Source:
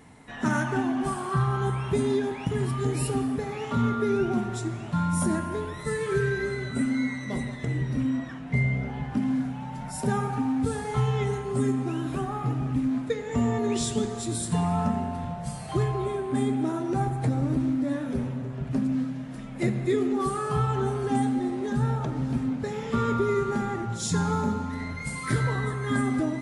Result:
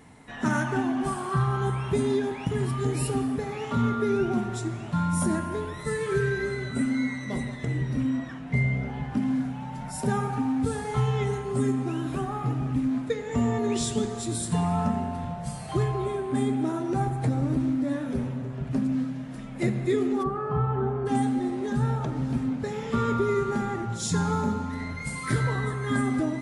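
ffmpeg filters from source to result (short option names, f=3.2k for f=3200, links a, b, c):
-filter_complex "[0:a]asplit=3[a][b][c];[a]afade=t=out:st=20.22:d=0.02[d];[b]lowpass=1.4k,afade=t=in:st=20.22:d=0.02,afade=t=out:st=21.05:d=0.02[e];[c]afade=t=in:st=21.05:d=0.02[f];[d][e][f]amix=inputs=3:normalize=0"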